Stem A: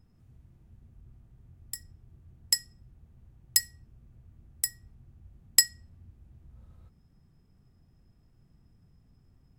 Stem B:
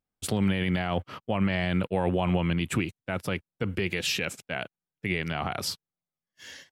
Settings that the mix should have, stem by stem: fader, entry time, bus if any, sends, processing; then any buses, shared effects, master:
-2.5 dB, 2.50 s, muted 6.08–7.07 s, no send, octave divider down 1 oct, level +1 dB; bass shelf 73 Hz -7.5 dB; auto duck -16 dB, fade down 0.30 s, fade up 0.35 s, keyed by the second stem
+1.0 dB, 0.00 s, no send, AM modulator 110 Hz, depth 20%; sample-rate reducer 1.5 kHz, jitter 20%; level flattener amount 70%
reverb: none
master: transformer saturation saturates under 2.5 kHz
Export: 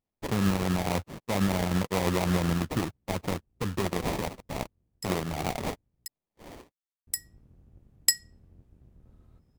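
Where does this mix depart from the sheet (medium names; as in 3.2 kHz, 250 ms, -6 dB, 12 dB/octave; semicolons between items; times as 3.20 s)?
stem B: missing level flattener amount 70%; master: missing transformer saturation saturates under 2.5 kHz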